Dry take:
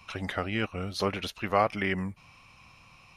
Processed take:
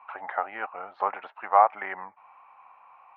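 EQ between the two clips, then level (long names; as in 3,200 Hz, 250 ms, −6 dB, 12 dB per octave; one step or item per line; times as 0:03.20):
high-pass with resonance 830 Hz, resonance Q 4.3
low-pass filter 1,800 Hz 24 dB per octave
0.0 dB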